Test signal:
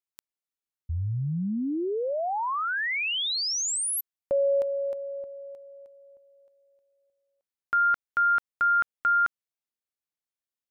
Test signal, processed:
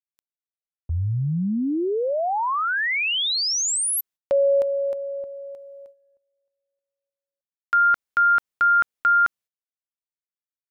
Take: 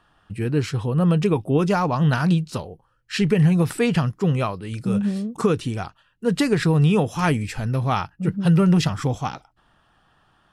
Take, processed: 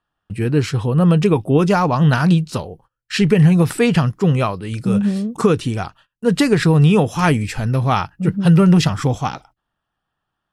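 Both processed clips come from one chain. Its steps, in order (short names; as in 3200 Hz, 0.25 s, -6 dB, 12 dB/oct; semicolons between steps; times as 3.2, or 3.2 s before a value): gate -51 dBFS, range -22 dB; gain +5 dB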